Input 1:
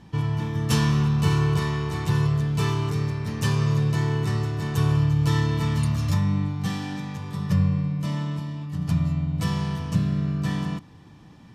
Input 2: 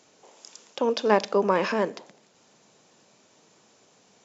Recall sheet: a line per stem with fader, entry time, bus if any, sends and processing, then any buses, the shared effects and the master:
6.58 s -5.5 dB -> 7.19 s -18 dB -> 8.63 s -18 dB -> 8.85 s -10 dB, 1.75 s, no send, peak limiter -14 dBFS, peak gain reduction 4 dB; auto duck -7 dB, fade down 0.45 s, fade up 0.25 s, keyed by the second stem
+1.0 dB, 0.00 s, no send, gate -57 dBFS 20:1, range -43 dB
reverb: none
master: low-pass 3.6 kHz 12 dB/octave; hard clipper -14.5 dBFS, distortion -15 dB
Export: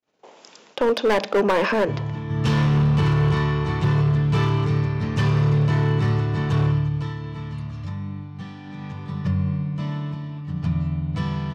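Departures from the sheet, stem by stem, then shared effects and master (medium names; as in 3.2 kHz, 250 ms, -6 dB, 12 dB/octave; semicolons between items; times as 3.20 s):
stem 1 -5.5 dB -> +4.5 dB; stem 2 +1.0 dB -> +7.0 dB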